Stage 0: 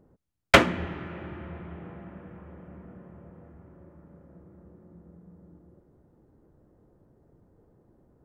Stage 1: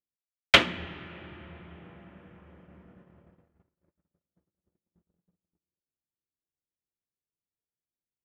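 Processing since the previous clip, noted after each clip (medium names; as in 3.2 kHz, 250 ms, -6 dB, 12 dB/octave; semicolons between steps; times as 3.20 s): gate -47 dBFS, range -37 dB; peaking EQ 3.3 kHz +13 dB 1.4 oct; trim -7.5 dB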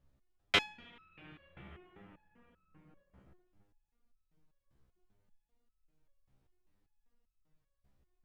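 level rider gain up to 4.5 dB; added noise brown -62 dBFS; resonator arpeggio 5.1 Hz 66–1300 Hz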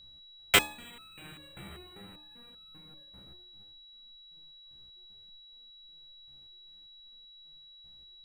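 sample-rate reducer 11 kHz, jitter 0%; whistle 3.9 kHz -58 dBFS; de-hum 75.79 Hz, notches 16; trim +6.5 dB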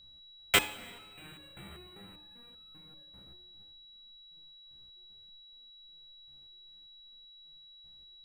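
reverberation RT60 1.8 s, pre-delay 44 ms, DRR 16 dB; trim -2.5 dB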